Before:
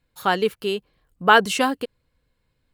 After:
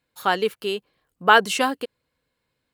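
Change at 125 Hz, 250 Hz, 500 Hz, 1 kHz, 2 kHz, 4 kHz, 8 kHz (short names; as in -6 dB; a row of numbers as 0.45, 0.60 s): -5.0, -3.5, -1.0, -0.5, 0.0, 0.0, 0.0 dB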